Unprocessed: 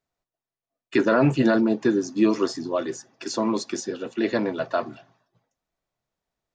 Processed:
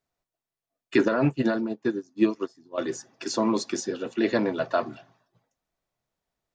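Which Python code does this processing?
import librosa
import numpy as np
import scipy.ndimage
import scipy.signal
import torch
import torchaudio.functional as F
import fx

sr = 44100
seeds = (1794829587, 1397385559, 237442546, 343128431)

y = fx.upward_expand(x, sr, threshold_db=-31.0, expansion=2.5, at=(1.08, 2.78))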